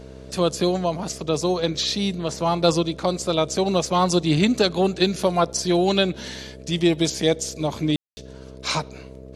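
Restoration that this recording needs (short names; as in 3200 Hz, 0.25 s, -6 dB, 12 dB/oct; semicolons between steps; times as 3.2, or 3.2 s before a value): de-hum 65.3 Hz, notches 10; notch 440 Hz, Q 30; room tone fill 7.96–8.17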